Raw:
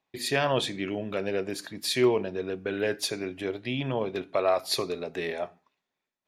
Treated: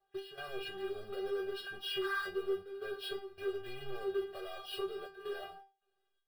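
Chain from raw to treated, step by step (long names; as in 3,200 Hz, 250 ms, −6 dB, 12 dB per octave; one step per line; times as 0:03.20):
hearing-aid frequency compression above 1,400 Hz 1.5 to 1
downward expander −41 dBFS
high-shelf EQ 2,000 Hz −10.5 dB
downward compressor, threshold −30 dBFS, peak gain reduction 12 dB
gate pattern "x.xxxxxxxxx.xx.x" 80 BPM −24 dB
sound drawn into the spectrogram noise, 0:02.01–0:02.27, 840–2,100 Hz −33 dBFS
power curve on the samples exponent 0.5
phaser with its sweep stopped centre 1,400 Hz, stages 8
stiff-string resonator 390 Hz, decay 0.31 s, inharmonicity 0.002
level +8.5 dB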